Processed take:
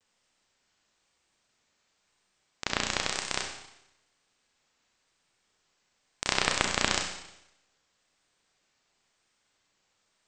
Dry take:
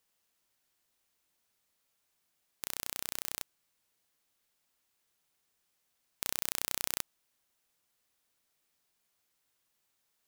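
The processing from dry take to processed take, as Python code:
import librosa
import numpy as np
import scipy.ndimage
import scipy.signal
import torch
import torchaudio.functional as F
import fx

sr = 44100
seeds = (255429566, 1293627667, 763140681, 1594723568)

y = fx.halfwave_hold(x, sr)
y = scipy.signal.sosfilt(scipy.signal.cheby1(8, 1.0, 8300.0, 'lowpass', fs=sr, output='sos'), y)
y = fx.vibrato(y, sr, rate_hz=1.0, depth_cents=73.0)
y = fx.rev_schroeder(y, sr, rt60_s=0.84, comb_ms=30, drr_db=2.5)
y = F.gain(torch.from_numpy(y), 2.0).numpy()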